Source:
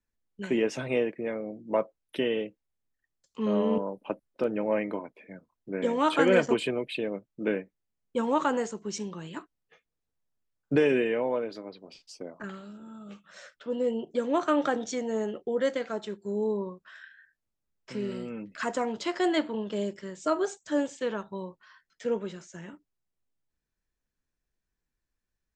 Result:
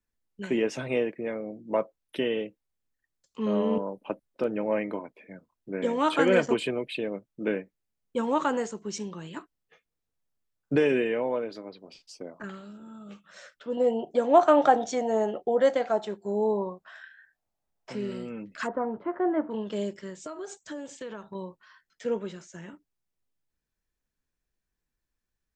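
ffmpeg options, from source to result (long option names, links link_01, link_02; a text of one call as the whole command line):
ffmpeg -i in.wav -filter_complex "[0:a]asettb=1/sr,asplit=3[link_01][link_02][link_03];[link_01]atrim=end=13.774[link_04];[link_02]atrim=start=13.77:end=17.95,asetpts=PTS-STARTPTS,afade=type=in:duration=0.004:curve=qsin,afade=type=out:start_time=4.176:duration=0.004:curve=qsin,equalizer=frequency=740:width_type=o:width=0.72:gain=14.5[link_05];[link_03]atrim=start=17.946[link_06];[link_04][link_05]acrossfade=duration=0.004:curve1=hsin:curve2=qsin[link_07];[link_07][link_06]acrossfade=duration=0.004:curve1=qsin:curve2=hsin,asplit=3[link_08][link_09][link_10];[link_08]afade=type=out:start_time=18.66:duration=0.02[link_11];[link_09]lowpass=frequency=1400:width=0.5412,lowpass=frequency=1400:width=1.3066,afade=type=in:start_time=18.66:duration=0.02,afade=type=out:start_time=19.5:duration=0.02[link_12];[link_10]afade=type=in:start_time=19.5:duration=0.02[link_13];[link_11][link_12][link_13]amix=inputs=3:normalize=0,asettb=1/sr,asplit=3[link_14][link_15][link_16];[link_14]atrim=end=20.154[link_17];[link_15]atrim=start=20.15:end=21.35,asetpts=PTS-STARTPTS,afade=type=in:duration=0.004:curve=qsin,afade=type=out:start_time=1.196:duration=0.004:curve=qsin,acompressor=threshold=-34dB:ratio=8:attack=3.2:release=140:knee=1:detection=peak[link_18];[link_16]atrim=start=21.346[link_19];[link_17][link_18]acrossfade=duration=0.004:curve1=hsin:curve2=qsin[link_20];[link_20][link_19]acrossfade=duration=0.004:curve1=qsin:curve2=hsin" out.wav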